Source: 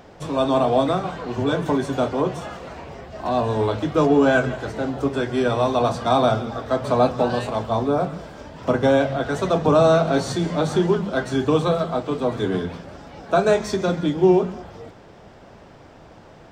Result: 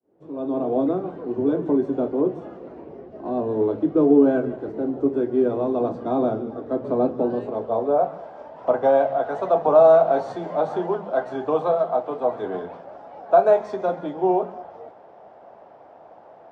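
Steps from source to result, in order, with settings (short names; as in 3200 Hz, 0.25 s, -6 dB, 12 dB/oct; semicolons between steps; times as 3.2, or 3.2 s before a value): opening faded in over 0.83 s; band-pass sweep 340 Hz -> 710 Hz, 7.43–8.07; gain +5 dB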